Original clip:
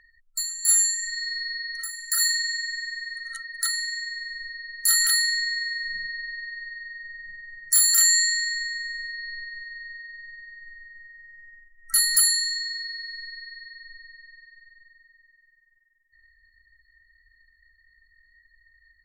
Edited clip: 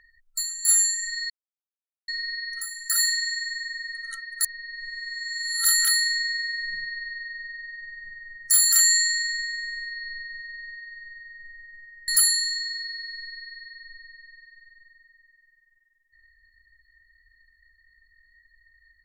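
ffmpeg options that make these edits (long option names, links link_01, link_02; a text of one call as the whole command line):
ffmpeg -i in.wav -filter_complex "[0:a]asplit=5[link_01][link_02][link_03][link_04][link_05];[link_01]atrim=end=1.3,asetpts=PTS-STARTPTS,afade=type=out:start_time=1.296:duration=0.004:curve=hsin,apad=pad_dur=0.78[link_06];[link_02]atrim=start=1.3:end=3.652,asetpts=PTS-STARTPTS,afade=type=in:duration=0.004:curve=hsin[link_07];[link_03]atrim=start=3.648:end=4.872,asetpts=PTS-STARTPTS,areverse[link_08];[link_04]atrim=start=4.868:end=11.302[link_09];[link_05]atrim=start=12.078[link_10];[link_06][link_07]concat=n=2:v=0:a=1[link_11];[link_11][link_08]acrossfade=duration=0.004:curve1=hsin:curve2=hsin[link_12];[link_12][link_09]acrossfade=duration=0.004:curve1=hsin:curve2=hsin[link_13];[link_13][link_10]acrossfade=duration=0.004:curve1=hsin:curve2=hsin" out.wav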